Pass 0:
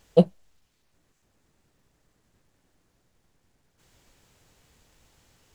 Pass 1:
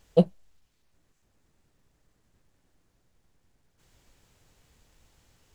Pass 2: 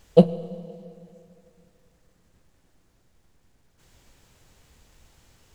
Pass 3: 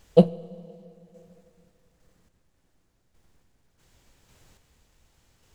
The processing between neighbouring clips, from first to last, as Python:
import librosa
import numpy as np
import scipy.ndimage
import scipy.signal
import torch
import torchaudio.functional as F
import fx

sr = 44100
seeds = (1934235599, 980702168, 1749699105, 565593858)

y1 = fx.low_shelf(x, sr, hz=80.0, db=6.0)
y1 = y1 * 10.0 ** (-3.0 / 20.0)
y2 = fx.rev_fdn(y1, sr, rt60_s=2.7, lf_ratio=1.0, hf_ratio=0.85, size_ms=86.0, drr_db=13.5)
y2 = y2 * 10.0 ** (5.5 / 20.0)
y3 = fx.tremolo_random(y2, sr, seeds[0], hz=3.5, depth_pct=55)